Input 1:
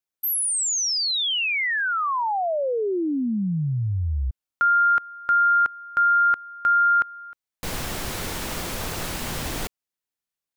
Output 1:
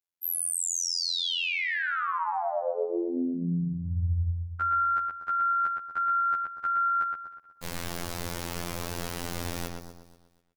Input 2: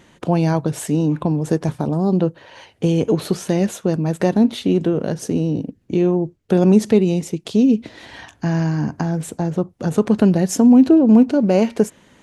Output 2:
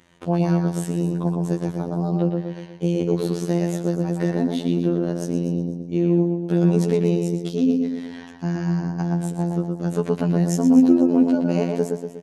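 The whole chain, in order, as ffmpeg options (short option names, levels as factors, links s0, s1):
-filter_complex "[0:a]asplit=2[s0][s1];[s1]adelay=118,lowpass=f=3200:p=1,volume=0.668,asplit=2[s2][s3];[s3]adelay=118,lowpass=f=3200:p=1,volume=0.29,asplit=2[s4][s5];[s5]adelay=118,lowpass=f=3200:p=1,volume=0.29,asplit=2[s6][s7];[s7]adelay=118,lowpass=f=3200:p=1,volume=0.29[s8];[s2][s4][s6][s8]amix=inputs=4:normalize=0[s9];[s0][s9]amix=inputs=2:normalize=0,afftfilt=real='hypot(re,im)*cos(PI*b)':imag='0':win_size=2048:overlap=0.75,asplit=2[s10][s11];[s11]aecho=0:1:244|488|732:0.188|0.0546|0.0158[s12];[s10][s12]amix=inputs=2:normalize=0,volume=0.668"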